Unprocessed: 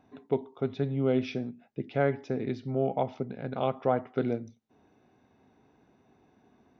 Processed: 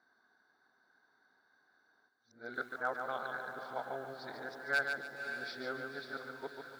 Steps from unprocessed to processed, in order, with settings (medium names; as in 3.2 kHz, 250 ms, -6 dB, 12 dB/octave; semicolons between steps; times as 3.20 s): reverse the whole clip; two resonant band-passes 2.6 kHz, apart 1.5 oct; distance through air 53 m; wavefolder -33 dBFS; echo that smears into a reverb 545 ms, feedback 45%, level -8 dB; bit-crushed delay 144 ms, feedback 35%, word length 12-bit, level -5.5 dB; trim +9.5 dB